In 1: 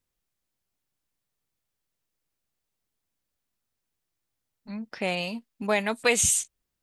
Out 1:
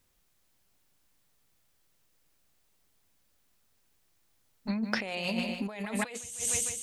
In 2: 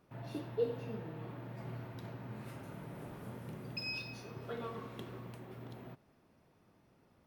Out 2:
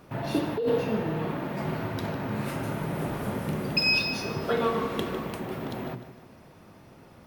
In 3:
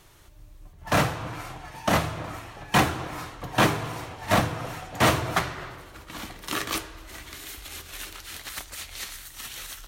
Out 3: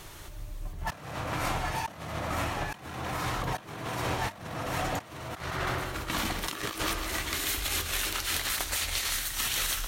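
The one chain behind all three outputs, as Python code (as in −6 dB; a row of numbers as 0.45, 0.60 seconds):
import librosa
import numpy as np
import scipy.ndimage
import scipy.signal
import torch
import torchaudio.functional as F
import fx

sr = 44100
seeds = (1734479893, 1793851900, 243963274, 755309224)

y = fx.hum_notches(x, sr, base_hz=60, count=8)
y = fx.echo_feedback(y, sr, ms=152, feedback_pct=44, wet_db=-13)
y = fx.over_compress(y, sr, threshold_db=-38.0, ratio=-1.0)
y = y * 10.0 ** (-12 / 20.0) / np.max(np.abs(y))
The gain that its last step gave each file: +3.0, +16.0, +3.0 decibels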